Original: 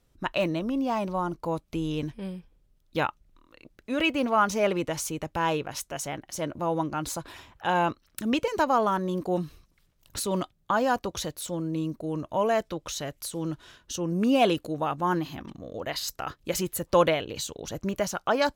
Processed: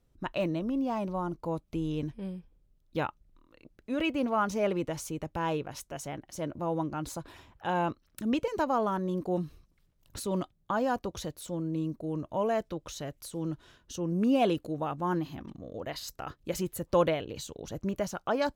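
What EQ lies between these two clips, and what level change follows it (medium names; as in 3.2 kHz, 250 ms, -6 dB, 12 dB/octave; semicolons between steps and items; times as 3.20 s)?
tilt shelf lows +3.5 dB, about 750 Hz; -5.0 dB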